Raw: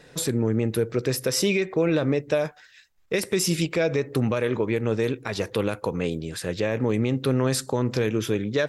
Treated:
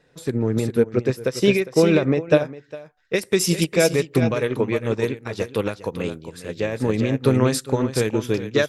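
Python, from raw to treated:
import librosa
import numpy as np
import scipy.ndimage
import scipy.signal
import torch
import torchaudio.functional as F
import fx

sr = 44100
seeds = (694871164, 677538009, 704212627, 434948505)

y = fx.high_shelf(x, sr, hz=4200.0, db=fx.steps((0.0, -6.5), (3.14, 2.0)))
y = y + 10.0 ** (-7.0 / 20.0) * np.pad(y, (int(406 * sr / 1000.0), 0))[:len(y)]
y = fx.upward_expand(y, sr, threshold_db=-30.0, expansion=2.5)
y = y * librosa.db_to_amplitude(8.5)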